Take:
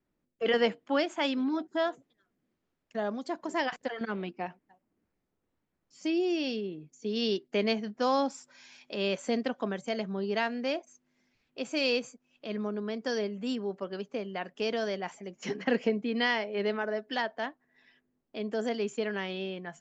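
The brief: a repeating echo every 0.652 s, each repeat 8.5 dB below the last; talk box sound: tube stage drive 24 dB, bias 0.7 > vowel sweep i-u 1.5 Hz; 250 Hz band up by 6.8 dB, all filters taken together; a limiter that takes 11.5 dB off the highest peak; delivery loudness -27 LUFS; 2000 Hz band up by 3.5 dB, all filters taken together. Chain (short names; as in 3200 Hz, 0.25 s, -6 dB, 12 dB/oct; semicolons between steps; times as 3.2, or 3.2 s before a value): bell 250 Hz +8 dB; bell 2000 Hz +4 dB; limiter -22.5 dBFS; feedback echo 0.652 s, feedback 38%, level -8.5 dB; tube stage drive 24 dB, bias 0.7; vowel sweep i-u 1.5 Hz; gain +17.5 dB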